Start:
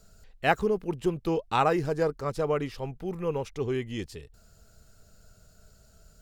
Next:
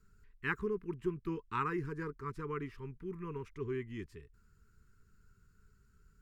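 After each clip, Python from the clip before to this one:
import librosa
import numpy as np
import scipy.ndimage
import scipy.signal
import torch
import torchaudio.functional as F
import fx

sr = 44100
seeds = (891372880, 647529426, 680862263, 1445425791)

y = scipy.signal.sosfilt(scipy.signal.cheby1(3, 1.0, [420.0, 990.0], 'bandstop', fs=sr, output='sos'), x)
y = fx.high_shelf_res(y, sr, hz=2700.0, db=-10.0, q=1.5)
y = F.gain(torch.from_numpy(y), -8.0).numpy()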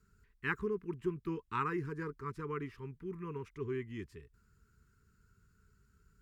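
y = scipy.signal.sosfilt(scipy.signal.butter(2, 41.0, 'highpass', fs=sr, output='sos'), x)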